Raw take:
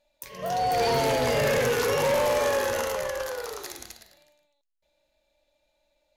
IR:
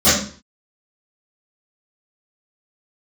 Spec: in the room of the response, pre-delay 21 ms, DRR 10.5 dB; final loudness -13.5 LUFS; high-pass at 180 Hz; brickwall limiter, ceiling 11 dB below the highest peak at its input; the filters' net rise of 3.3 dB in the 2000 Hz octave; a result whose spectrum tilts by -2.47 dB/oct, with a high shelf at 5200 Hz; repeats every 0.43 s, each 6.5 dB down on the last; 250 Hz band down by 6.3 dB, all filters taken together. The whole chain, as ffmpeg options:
-filter_complex "[0:a]highpass=180,equalizer=f=250:t=o:g=-6.5,equalizer=f=2k:t=o:g=5,highshelf=f=5.2k:g=-6,alimiter=level_in=1dB:limit=-24dB:level=0:latency=1,volume=-1dB,aecho=1:1:430|860|1290|1720|2150|2580:0.473|0.222|0.105|0.0491|0.0231|0.0109,asplit=2[a][b];[1:a]atrim=start_sample=2205,adelay=21[c];[b][c]afir=irnorm=-1:irlink=0,volume=-35dB[d];[a][d]amix=inputs=2:normalize=0,volume=18.5dB"

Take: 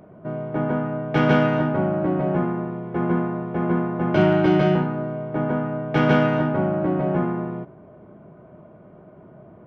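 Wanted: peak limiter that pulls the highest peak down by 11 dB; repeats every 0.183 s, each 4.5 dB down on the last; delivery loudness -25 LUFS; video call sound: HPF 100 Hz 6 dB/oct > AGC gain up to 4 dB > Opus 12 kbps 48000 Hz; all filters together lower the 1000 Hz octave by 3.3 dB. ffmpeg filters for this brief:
-af "equalizer=f=1k:t=o:g=-4.5,alimiter=limit=-16dB:level=0:latency=1,highpass=f=100:p=1,aecho=1:1:183|366|549|732|915|1098|1281|1464|1647:0.596|0.357|0.214|0.129|0.0772|0.0463|0.0278|0.0167|0.01,dynaudnorm=m=4dB,volume=0.5dB" -ar 48000 -c:a libopus -b:a 12k

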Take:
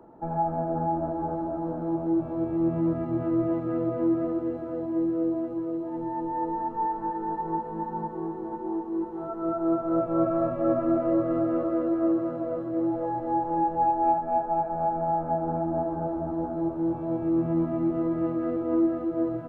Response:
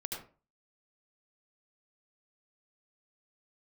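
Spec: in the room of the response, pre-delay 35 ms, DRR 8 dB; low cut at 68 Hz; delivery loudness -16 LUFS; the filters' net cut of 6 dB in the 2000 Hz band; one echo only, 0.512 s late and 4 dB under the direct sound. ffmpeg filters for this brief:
-filter_complex "[0:a]highpass=68,equalizer=f=2k:t=o:g=-8,aecho=1:1:512:0.631,asplit=2[a][b];[1:a]atrim=start_sample=2205,adelay=35[c];[b][c]afir=irnorm=-1:irlink=0,volume=-8.5dB[d];[a][d]amix=inputs=2:normalize=0,volume=10.5dB"

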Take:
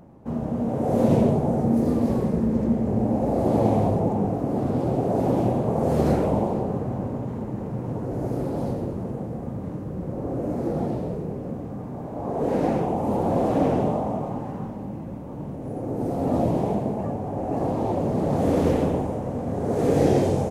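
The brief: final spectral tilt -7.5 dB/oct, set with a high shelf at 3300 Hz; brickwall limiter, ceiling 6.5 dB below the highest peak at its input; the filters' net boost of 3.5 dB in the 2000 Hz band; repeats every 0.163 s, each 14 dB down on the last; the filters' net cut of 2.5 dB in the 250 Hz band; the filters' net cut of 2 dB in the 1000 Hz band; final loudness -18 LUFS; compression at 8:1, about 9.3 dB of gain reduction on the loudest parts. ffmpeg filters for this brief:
-af "equalizer=f=250:t=o:g=-3,equalizer=f=1k:t=o:g=-3.5,equalizer=f=2k:t=o:g=6.5,highshelf=f=3.3k:g=-3.5,acompressor=threshold=-26dB:ratio=8,alimiter=limit=-23dB:level=0:latency=1,aecho=1:1:163|326:0.2|0.0399,volume=14.5dB"

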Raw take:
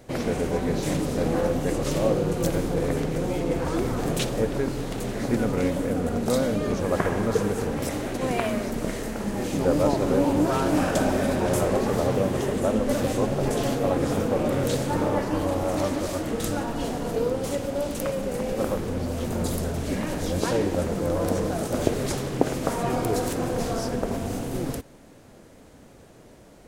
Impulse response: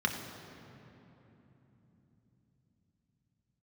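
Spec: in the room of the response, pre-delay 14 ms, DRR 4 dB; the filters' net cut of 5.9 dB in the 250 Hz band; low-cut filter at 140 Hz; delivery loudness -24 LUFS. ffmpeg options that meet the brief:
-filter_complex "[0:a]highpass=140,equalizer=f=250:t=o:g=-7,asplit=2[a][b];[1:a]atrim=start_sample=2205,adelay=14[c];[b][c]afir=irnorm=-1:irlink=0,volume=-12.5dB[d];[a][d]amix=inputs=2:normalize=0,volume=3dB"

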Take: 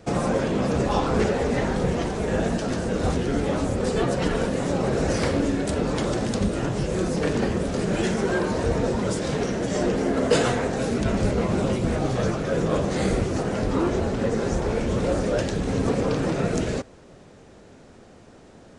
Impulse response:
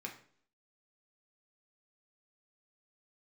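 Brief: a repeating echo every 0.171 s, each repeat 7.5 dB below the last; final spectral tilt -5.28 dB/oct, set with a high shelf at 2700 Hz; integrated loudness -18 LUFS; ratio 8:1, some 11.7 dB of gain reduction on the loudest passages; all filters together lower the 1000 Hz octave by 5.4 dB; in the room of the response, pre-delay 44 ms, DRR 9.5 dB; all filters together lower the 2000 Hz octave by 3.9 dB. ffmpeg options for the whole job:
-filter_complex "[0:a]equalizer=f=1k:t=o:g=-7.5,equalizer=f=2k:t=o:g=-5.5,highshelf=f=2.7k:g=7.5,acompressor=threshold=-28dB:ratio=8,aecho=1:1:171|342|513|684|855:0.422|0.177|0.0744|0.0312|0.0131,asplit=2[a][b];[1:a]atrim=start_sample=2205,adelay=44[c];[b][c]afir=irnorm=-1:irlink=0,volume=-8.5dB[d];[a][d]amix=inputs=2:normalize=0,volume=13dB"

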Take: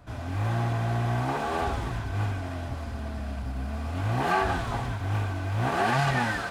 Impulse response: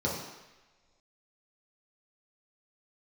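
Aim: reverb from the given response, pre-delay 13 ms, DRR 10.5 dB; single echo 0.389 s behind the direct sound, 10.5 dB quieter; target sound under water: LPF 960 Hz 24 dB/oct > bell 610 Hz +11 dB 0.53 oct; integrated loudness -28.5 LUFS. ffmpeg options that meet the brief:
-filter_complex "[0:a]aecho=1:1:389:0.299,asplit=2[a][b];[1:a]atrim=start_sample=2205,adelay=13[c];[b][c]afir=irnorm=-1:irlink=0,volume=-19dB[d];[a][d]amix=inputs=2:normalize=0,lowpass=f=960:w=0.5412,lowpass=f=960:w=1.3066,equalizer=f=610:t=o:w=0.53:g=11,volume=-2dB"

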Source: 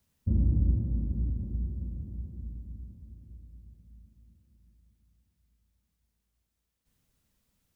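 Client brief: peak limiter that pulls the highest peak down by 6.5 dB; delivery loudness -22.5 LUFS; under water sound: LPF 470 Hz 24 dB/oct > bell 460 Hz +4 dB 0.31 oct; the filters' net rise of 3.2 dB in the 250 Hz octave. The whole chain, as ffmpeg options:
-af "equalizer=f=250:t=o:g=4,alimiter=limit=-20.5dB:level=0:latency=1,lowpass=f=470:w=0.5412,lowpass=f=470:w=1.3066,equalizer=f=460:t=o:w=0.31:g=4,volume=11dB"

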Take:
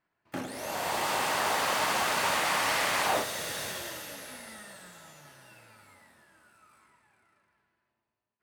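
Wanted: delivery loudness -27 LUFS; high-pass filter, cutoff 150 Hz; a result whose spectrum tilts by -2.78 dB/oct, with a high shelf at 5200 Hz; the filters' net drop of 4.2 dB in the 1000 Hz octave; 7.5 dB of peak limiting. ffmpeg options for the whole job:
-af "highpass=150,equalizer=f=1k:t=o:g=-5,highshelf=f=5.2k:g=-6.5,volume=8.5dB,alimiter=limit=-17.5dB:level=0:latency=1"

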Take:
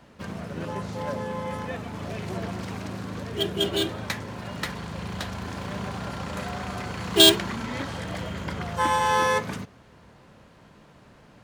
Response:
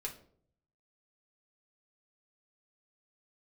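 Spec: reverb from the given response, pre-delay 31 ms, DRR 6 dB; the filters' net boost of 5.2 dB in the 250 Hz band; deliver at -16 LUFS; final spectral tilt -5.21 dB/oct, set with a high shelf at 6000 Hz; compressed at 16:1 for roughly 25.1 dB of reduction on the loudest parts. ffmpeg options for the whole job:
-filter_complex "[0:a]equalizer=f=250:t=o:g=7.5,highshelf=f=6k:g=8,acompressor=threshold=-32dB:ratio=16,asplit=2[a][b];[1:a]atrim=start_sample=2205,adelay=31[c];[b][c]afir=irnorm=-1:irlink=0,volume=-5.5dB[d];[a][d]amix=inputs=2:normalize=0,volume=19.5dB"

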